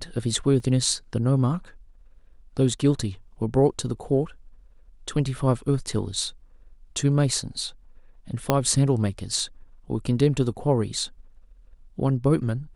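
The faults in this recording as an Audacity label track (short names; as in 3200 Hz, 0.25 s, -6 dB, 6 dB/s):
0.600000	0.600000	gap 2.1 ms
8.500000	8.500000	pop -5 dBFS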